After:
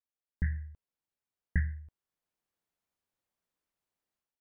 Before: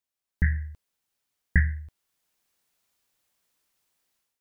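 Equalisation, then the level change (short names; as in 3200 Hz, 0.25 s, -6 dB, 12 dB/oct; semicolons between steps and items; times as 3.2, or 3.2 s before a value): high shelf 2000 Hz -11 dB; -7.5 dB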